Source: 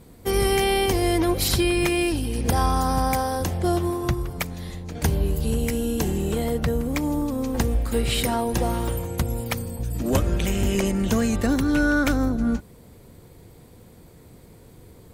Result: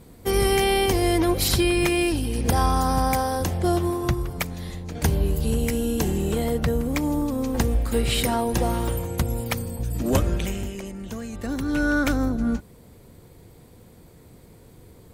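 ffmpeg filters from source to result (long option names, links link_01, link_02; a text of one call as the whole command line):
ffmpeg -i in.wav -af "volume=11.5dB,afade=type=out:start_time=10.22:duration=0.52:silence=0.237137,afade=type=in:start_time=11.32:duration=0.62:silence=0.281838" out.wav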